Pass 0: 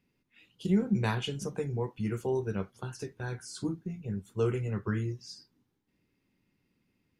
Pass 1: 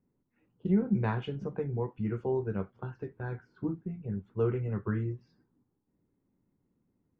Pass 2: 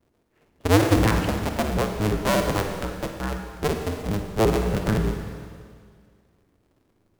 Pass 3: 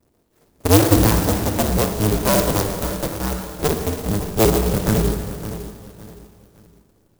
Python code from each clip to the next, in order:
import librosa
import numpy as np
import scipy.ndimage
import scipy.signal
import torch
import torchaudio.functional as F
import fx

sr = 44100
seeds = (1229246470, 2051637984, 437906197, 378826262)

y1 = scipy.signal.sosfilt(scipy.signal.butter(2, 1600.0, 'lowpass', fs=sr, output='sos'), x)
y1 = fx.env_lowpass(y1, sr, base_hz=1100.0, full_db=-29.0)
y2 = fx.cycle_switch(y1, sr, every=2, mode='inverted')
y2 = fx.rev_schroeder(y2, sr, rt60_s=2.0, comb_ms=38, drr_db=4.5)
y2 = fx.vibrato(y2, sr, rate_hz=1.3, depth_cents=44.0)
y2 = y2 * 10.0 ** (8.0 / 20.0)
y3 = fx.echo_feedback(y2, sr, ms=563, feedback_pct=32, wet_db=-13.0)
y3 = fx.clock_jitter(y3, sr, seeds[0], jitter_ms=0.11)
y3 = y3 * 10.0 ** (4.5 / 20.0)